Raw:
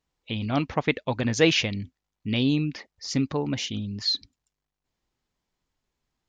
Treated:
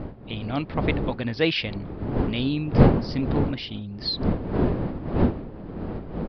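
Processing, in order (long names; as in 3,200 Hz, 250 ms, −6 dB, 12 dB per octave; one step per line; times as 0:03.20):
wind on the microphone 300 Hz −23 dBFS
downsampling to 11,025 Hz
level −2.5 dB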